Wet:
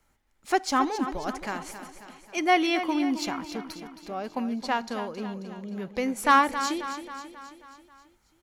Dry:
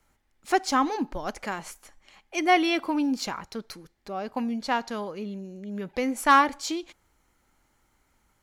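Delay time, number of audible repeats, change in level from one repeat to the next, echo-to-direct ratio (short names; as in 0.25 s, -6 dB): 0.269 s, 5, -5.0 dB, -9.5 dB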